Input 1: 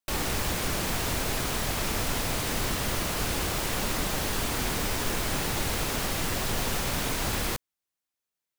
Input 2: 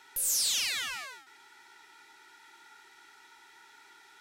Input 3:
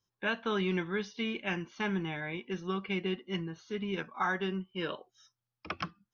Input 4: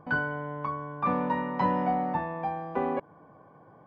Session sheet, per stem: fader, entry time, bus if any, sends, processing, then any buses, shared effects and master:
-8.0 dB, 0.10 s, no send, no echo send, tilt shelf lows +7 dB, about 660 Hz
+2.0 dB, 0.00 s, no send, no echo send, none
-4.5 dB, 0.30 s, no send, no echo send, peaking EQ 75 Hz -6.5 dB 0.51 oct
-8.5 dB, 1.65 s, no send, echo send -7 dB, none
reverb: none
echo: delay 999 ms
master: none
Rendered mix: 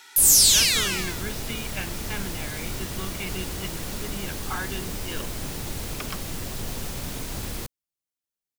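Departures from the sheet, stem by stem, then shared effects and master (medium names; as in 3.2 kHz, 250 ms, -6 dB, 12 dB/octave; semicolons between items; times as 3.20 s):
stem 4: muted; master: extra treble shelf 2.3 kHz +12 dB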